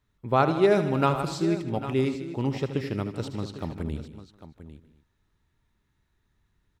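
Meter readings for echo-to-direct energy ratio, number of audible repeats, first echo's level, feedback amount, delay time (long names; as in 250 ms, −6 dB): −7.5 dB, 7, −11.0 dB, repeats not evenly spaced, 77 ms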